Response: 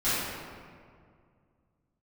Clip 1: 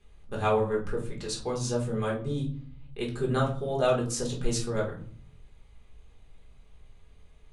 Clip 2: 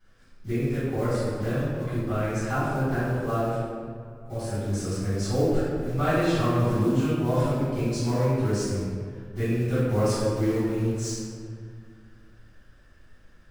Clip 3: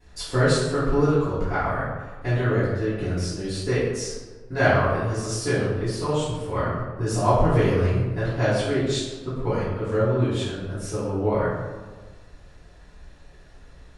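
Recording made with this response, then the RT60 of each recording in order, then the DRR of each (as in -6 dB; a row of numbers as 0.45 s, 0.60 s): 2; 0.50 s, 2.1 s, 1.4 s; -2.5 dB, -16.0 dB, -17.5 dB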